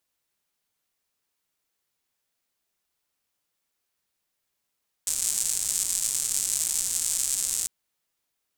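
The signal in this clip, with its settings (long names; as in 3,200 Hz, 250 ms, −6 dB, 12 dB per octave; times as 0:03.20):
rain-like ticks over hiss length 2.60 s, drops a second 230, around 7,800 Hz, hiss −22.5 dB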